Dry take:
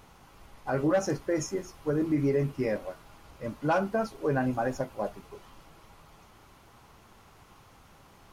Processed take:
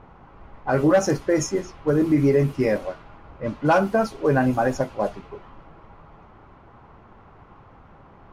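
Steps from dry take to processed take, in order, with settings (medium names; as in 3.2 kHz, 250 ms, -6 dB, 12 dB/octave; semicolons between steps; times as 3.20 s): level-controlled noise filter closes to 1.3 kHz, open at -25.5 dBFS; trim +8 dB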